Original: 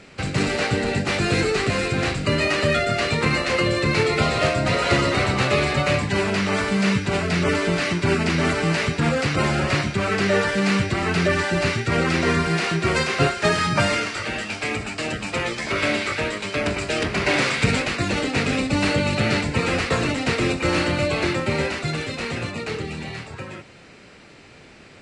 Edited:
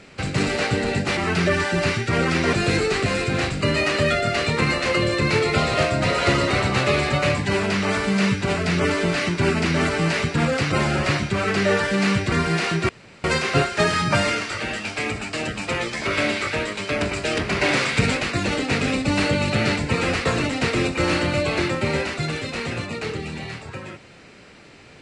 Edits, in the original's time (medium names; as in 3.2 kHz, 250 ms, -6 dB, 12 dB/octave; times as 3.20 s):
10.96–12.32 s: move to 1.17 s
12.89 s: insert room tone 0.35 s